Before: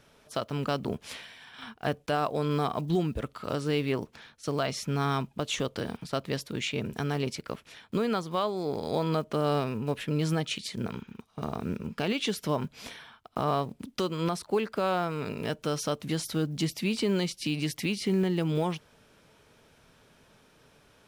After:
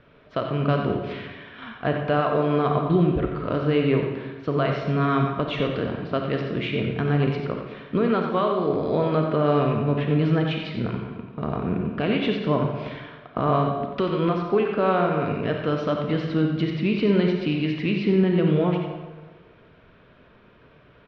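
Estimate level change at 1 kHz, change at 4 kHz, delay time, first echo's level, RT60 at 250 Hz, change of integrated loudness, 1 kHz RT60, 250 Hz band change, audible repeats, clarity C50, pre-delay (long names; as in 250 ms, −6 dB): +6.0 dB, 0.0 dB, 90 ms, −8.0 dB, 1.4 s, +7.0 dB, 1.3 s, +8.0 dB, 1, 2.5 dB, 31 ms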